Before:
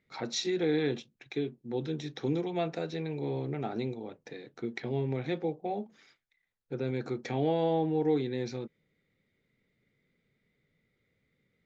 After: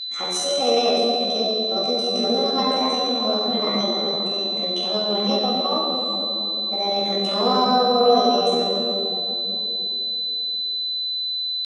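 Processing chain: whistle 2.6 kHz -35 dBFS; simulated room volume 120 m³, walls hard, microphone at 0.81 m; pitch shift +7.5 st; trim +2 dB

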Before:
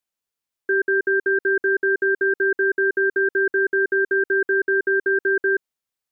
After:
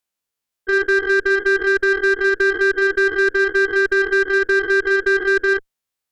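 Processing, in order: spectrogram pixelated in time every 50 ms; Chebyshev shaper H 2 -25 dB, 4 -19 dB, 5 -43 dB, 8 -30 dB, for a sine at -12 dBFS; trim +4 dB

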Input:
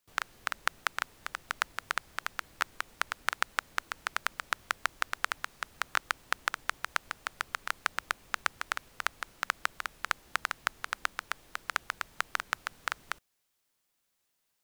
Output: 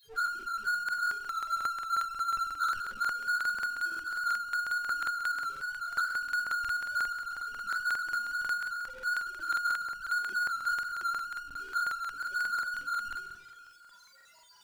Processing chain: tracing distortion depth 0.18 ms; loudest bins only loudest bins 4; 1.16–2.75 s: frequency shift -40 Hz; three-band isolator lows -21 dB, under 360 Hz, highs -17 dB, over 6.5 kHz; on a send: feedback echo behind a high-pass 347 ms, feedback 33%, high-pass 1.9 kHz, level -20.5 dB; on the sum: spectral noise reduction 13 dB; simulated room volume 48 m³, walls mixed, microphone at 1.9 m; power-law waveshaper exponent 0.5; crackling interface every 0.18 s, samples 2048, repeat, from 0.84 s

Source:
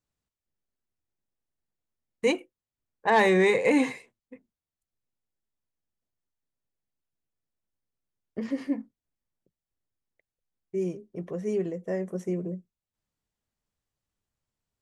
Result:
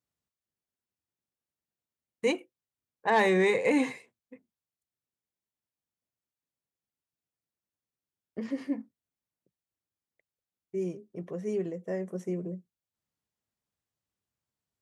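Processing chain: high-pass 81 Hz; trim -3 dB

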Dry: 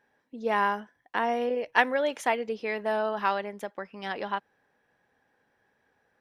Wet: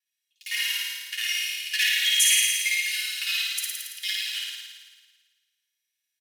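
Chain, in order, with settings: time reversed locally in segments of 51 ms; differentiator; in parallel at -10.5 dB: bit crusher 7-bit; on the sum: resampled via 32 kHz; on a send at -1.5 dB: reverberation RT60 1.3 s, pre-delay 5 ms; on the sum: waveshaping leveller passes 3; steep high-pass 2.2 kHz 36 dB/octave; comb 2.8 ms, depth 63%; flutter echo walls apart 9.5 m, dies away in 1.4 s; trim +5 dB

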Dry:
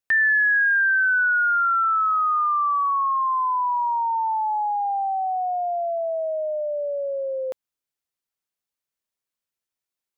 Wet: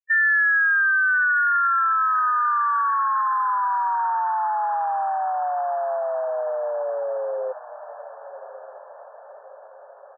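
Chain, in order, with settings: harmony voices -4 st -12 dB; loudest bins only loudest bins 4; echo that smears into a reverb 1198 ms, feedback 55%, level -14.5 dB

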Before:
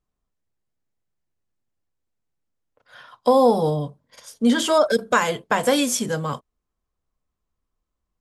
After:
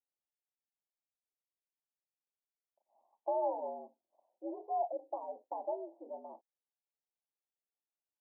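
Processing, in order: differentiator; frequency shift +92 Hz; steep low-pass 910 Hz 96 dB/octave; peaking EQ 120 Hz -10 dB 1.8 oct; trim +6 dB

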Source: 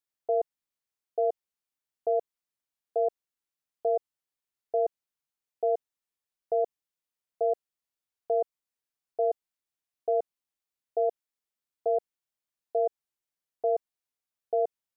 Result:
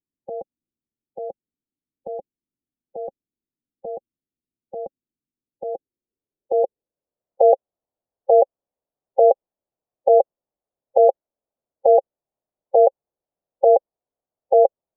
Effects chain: low-pass sweep 230 Hz -> 530 Hz, 5.41–7.40 s; formant shift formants +3 st; trim +9 dB

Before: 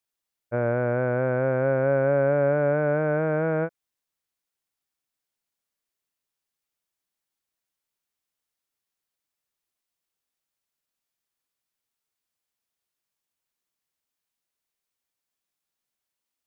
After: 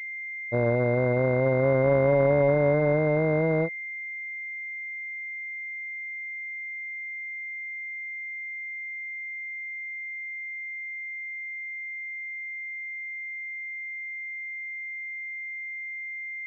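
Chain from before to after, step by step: local Wiener filter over 25 samples; class-D stage that switches slowly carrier 2.1 kHz; trim +1.5 dB

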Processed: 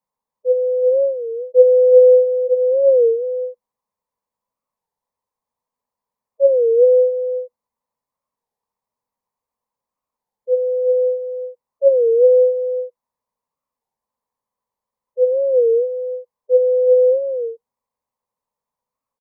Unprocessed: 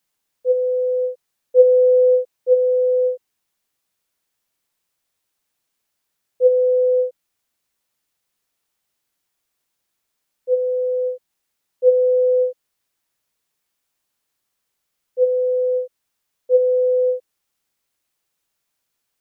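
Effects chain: spectral gate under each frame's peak -20 dB strong; FFT filter 160 Hz 0 dB, 240 Hz +5 dB, 330 Hz -9 dB, 490 Hz +8 dB, 700 Hz +1 dB, 1 kHz +13 dB, 1.4 kHz -10 dB, 2 kHz -7 dB, 3 kHz -16 dB, 4.4 kHz -11 dB; on a send: delay 369 ms -6.5 dB; on the sum: warped record 33 1/3 rpm, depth 160 cents; trim -6 dB

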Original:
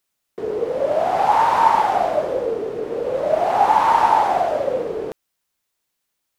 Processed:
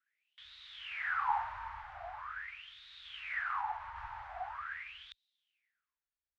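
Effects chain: 3.39–3.96 s: compression 3:1, threshold -16 dBFS, peak gain reduction 5 dB; inverse Chebyshev band-stop 240–490 Hz, stop band 80 dB; tilt EQ -3.5 dB/octave; wah-wah 0.43 Hz 480–3800 Hz, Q 12; bass shelf 98 Hz +8 dB; trim +15.5 dB

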